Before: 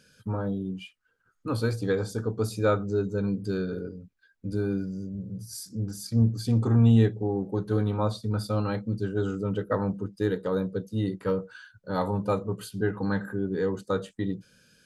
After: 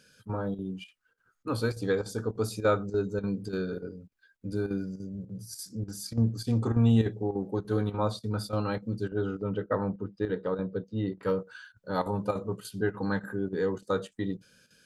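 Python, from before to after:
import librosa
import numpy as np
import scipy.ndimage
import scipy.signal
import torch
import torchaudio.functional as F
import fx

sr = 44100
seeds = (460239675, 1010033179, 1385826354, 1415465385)

y = fx.low_shelf(x, sr, hz=220.0, db=-5.0)
y = fx.chopper(y, sr, hz=3.4, depth_pct=65, duty_pct=85)
y = fx.air_absorb(y, sr, metres=220.0, at=(9.08, 11.23))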